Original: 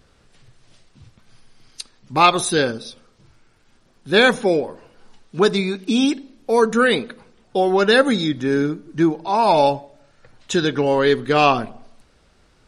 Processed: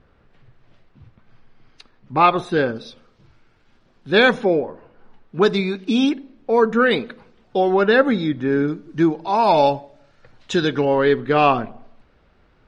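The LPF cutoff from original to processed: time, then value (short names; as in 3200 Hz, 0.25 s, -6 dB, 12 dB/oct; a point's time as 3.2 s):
2100 Hz
from 2.76 s 3900 Hz
from 4.45 s 1900 Hz
from 5.41 s 4200 Hz
from 6.09 s 2500 Hz
from 6.91 s 4100 Hz
from 7.74 s 2400 Hz
from 8.68 s 5000 Hz
from 10.85 s 2600 Hz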